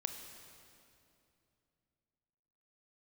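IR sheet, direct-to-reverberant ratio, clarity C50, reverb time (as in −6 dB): 5.5 dB, 6.5 dB, 2.7 s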